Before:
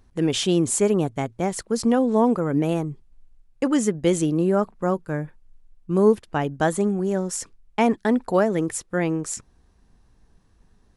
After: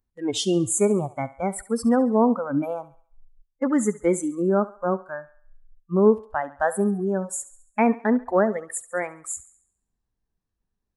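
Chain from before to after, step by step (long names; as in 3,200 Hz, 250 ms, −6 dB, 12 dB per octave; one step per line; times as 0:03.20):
noise reduction from a noise print of the clip's start 23 dB
feedback echo with a high-pass in the loop 69 ms, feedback 47%, high-pass 460 Hz, level −16.5 dB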